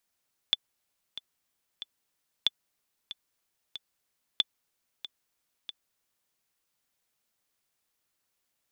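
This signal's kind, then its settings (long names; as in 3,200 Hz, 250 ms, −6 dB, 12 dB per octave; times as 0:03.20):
click track 93 BPM, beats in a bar 3, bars 3, 3,480 Hz, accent 15 dB −10 dBFS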